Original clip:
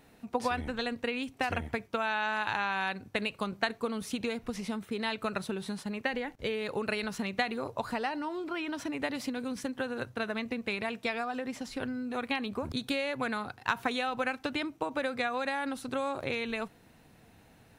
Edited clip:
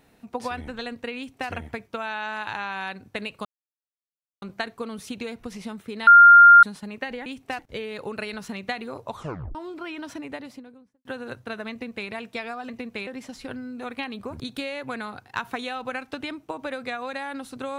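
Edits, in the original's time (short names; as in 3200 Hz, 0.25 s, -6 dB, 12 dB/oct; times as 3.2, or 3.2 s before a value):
1.17–1.5 copy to 6.29
3.45 insert silence 0.97 s
5.1–5.66 bleep 1400 Hz -6.5 dBFS
7.81 tape stop 0.44 s
8.76–9.75 studio fade out
10.41–10.79 copy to 11.39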